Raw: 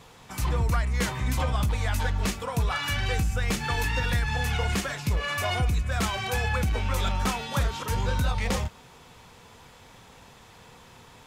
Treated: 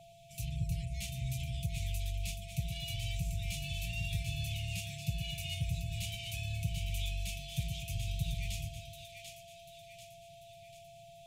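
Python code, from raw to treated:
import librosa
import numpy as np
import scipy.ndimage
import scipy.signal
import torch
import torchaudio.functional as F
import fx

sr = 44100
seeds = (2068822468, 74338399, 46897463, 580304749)

y = scipy.signal.sosfilt(scipy.signal.cheby1(5, 1.0, [170.0, 2400.0], 'bandstop', fs=sr, output='sos'), x)
y = fx.peak_eq(y, sr, hz=4800.0, db=-4.0, octaves=0.59)
y = y + 0.54 * np.pad(y, (int(7.2 * sr / 1000.0), 0))[:len(y)]
y = fx.cheby_harmonics(y, sr, harmonics=(8,), levels_db=(-36,), full_scale_db=-12.0)
y = y + 10.0 ** (-46.0 / 20.0) * np.sin(2.0 * np.pi * 680.0 * np.arange(len(y)) / sr)
y = fx.echo_split(y, sr, split_hz=800.0, low_ms=122, high_ms=741, feedback_pct=52, wet_db=-6.0)
y = y * librosa.db_to_amplitude(-8.5)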